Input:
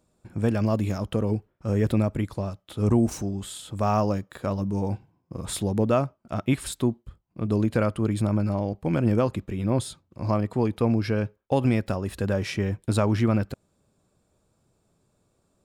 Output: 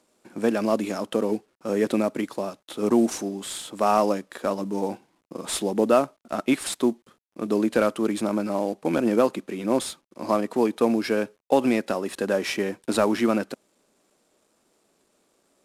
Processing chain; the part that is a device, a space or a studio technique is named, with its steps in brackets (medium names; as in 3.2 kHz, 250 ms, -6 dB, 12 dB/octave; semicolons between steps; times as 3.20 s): early wireless headset (high-pass 240 Hz 24 dB/octave; CVSD coder 64 kbps); trim +4.5 dB